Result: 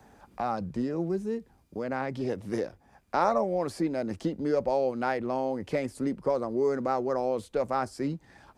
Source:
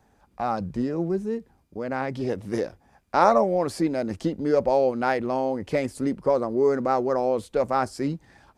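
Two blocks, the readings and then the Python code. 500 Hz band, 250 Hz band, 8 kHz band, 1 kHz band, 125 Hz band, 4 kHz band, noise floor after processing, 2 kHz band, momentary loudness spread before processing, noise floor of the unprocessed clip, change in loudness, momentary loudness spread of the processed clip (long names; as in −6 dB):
−5.0 dB, −4.0 dB, −5.5 dB, −5.5 dB, −4.0 dB, −5.0 dB, −63 dBFS, −5.0 dB, 10 LU, −63 dBFS, −5.0 dB, 7 LU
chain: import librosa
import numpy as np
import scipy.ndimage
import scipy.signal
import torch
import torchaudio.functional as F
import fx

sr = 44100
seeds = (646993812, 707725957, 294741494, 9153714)

y = fx.band_squash(x, sr, depth_pct=40)
y = y * librosa.db_to_amplitude(-5.0)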